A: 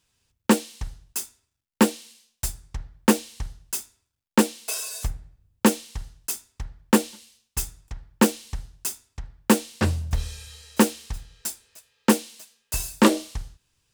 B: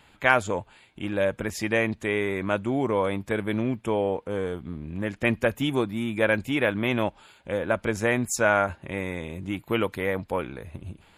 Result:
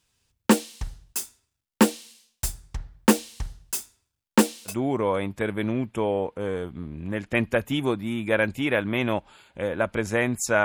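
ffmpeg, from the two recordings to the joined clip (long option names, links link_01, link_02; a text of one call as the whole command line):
ffmpeg -i cue0.wav -i cue1.wav -filter_complex "[0:a]apad=whole_dur=10.64,atrim=end=10.64,atrim=end=4.75,asetpts=PTS-STARTPTS[link_01];[1:a]atrim=start=2.55:end=8.54,asetpts=PTS-STARTPTS[link_02];[link_01][link_02]acrossfade=duration=0.1:curve1=tri:curve2=tri" out.wav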